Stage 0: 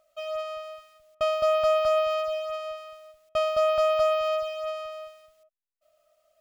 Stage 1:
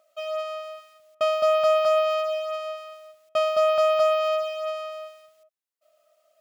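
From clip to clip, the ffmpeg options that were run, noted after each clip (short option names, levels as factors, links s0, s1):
-af "highpass=220,volume=1.33"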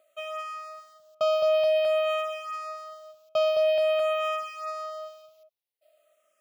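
-filter_complex "[0:a]alimiter=limit=0.133:level=0:latency=1:release=120,asplit=2[s0][s1];[s1]afreqshift=-0.5[s2];[s0][s2]amix=inputs=2:normalize=1,volume=1.26"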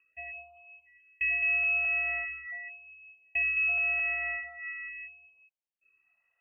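-af "lowpass=f=2700:t=q:w=0.5098,lowpass=f=2700:t=q:w=0.6013,lowpass=f=2700:t=q:w=0.9,lowpass=f=2700:t=q:w=2.563,afreqshift=-3200,afftfilt=real='re*(1-between(b*sr/1024,250*pow(1800/250,0.5+0.5*sin(2*PI*0.42*pts/sr))/1.41,250*pow(1800/250,0.5+0.5*sin(2*PI*0.42*pts/sr))*1.41))':imag='im*(1-between(b*sr/1024,250*pow(1800/250,0.5+0.5*sin(2*PI*0.42*pts/sr))/1.41,250*pow(1800/250,0.5+0.5*sin(2*PI*0.42*pts/sr))*1.41))':win_size=1024:overlap=0.75,volume=0.562"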